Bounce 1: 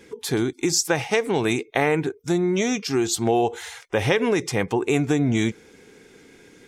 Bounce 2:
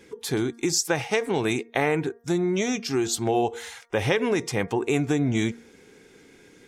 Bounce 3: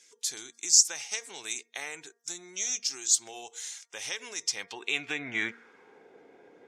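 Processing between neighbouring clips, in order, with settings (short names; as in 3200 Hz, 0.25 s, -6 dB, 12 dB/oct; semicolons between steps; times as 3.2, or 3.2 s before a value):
de-hum 233.6 Hz, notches 8; gain -2.5 dB
band-pass sweep 6600 Hz -> 690 Hz, 4.39–6.1; gain +7.5 dB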